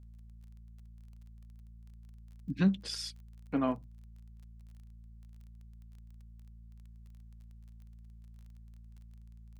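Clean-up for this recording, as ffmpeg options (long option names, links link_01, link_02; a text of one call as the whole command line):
ffmpeg -i in.wav -af "adeclick=threshold=4,bandreject=frequency=56.3:width_type=h:width=4,bandreject=frequency=112.6:width_type=h:width=4,bandreject=frequency=168.9:width_type=h:width=4,bandreject=frequency=225.2:width_type=h:width=4" out.wav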